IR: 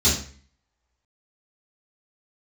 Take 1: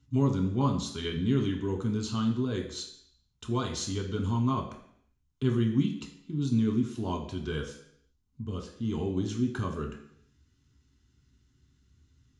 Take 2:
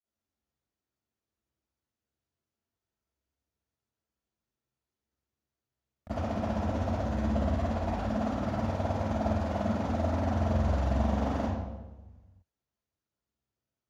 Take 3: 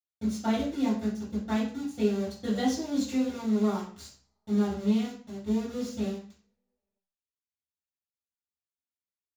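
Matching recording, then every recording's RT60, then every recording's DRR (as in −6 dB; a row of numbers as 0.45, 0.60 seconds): 3; 0.70, 1.2, 0.45 seconds; 1.5, −21.0, −12.5 decibels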